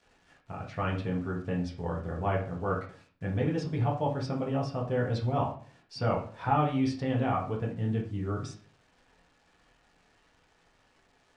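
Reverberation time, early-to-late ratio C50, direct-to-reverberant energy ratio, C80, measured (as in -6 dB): 0.45 s, 8.0 dB, -3.0 dB, 13.0 dB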